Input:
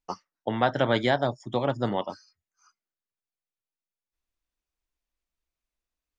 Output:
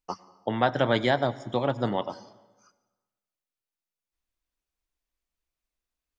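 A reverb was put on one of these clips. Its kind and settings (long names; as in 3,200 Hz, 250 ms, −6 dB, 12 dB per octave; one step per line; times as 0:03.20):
dense smooth reverb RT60 1.2 s, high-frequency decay 0.8×, pre-delay 85 ms, DRR 18 dB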